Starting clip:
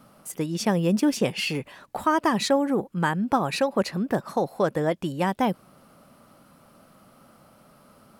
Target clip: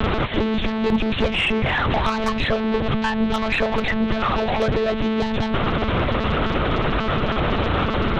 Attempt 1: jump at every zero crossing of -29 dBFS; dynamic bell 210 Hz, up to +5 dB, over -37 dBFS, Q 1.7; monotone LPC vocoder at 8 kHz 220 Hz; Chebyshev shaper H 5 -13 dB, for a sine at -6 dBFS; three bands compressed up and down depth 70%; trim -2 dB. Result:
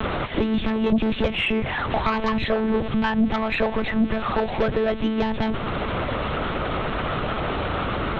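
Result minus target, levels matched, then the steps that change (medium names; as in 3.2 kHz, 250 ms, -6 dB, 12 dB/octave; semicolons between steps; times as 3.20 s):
jump at every zero crossing: distortion -7 dB
change: jump at every zero crossing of -19.5 dBFS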